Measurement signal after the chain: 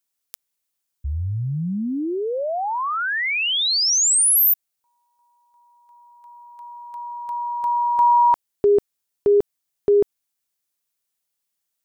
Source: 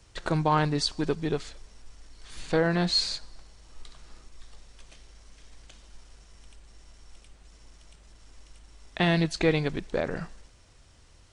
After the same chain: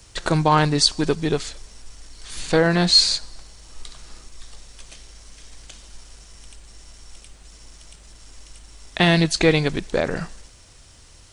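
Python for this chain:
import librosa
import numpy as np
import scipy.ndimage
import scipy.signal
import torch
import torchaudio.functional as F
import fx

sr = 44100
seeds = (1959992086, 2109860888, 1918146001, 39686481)

y = fx.high_shelf(x, sr, hz=4500.0, db=9.5)
y = F.gain(torch.from_numpy(y), 6.5).numpy()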